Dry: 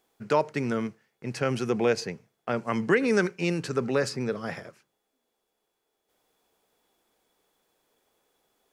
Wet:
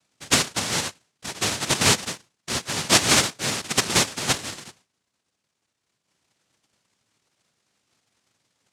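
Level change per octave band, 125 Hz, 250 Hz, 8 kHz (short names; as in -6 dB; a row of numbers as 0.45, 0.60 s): +2.0, -2.0, +21.5 dB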